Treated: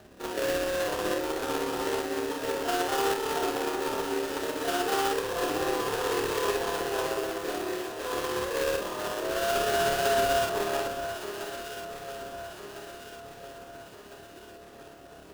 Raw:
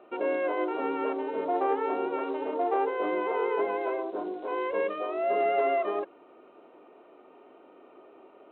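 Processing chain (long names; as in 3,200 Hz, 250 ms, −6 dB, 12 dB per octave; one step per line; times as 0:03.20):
noise in a band 35–560 Hz −55 dBFS
sample-rate reduction 2,200 Hz, jitter 20%
time stretch by overlap-add 1.8×, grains 125 ms
delay that swaps between a low-pass and a high-pass 677 ms, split 1,400 Hz, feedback 70%, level −7 dB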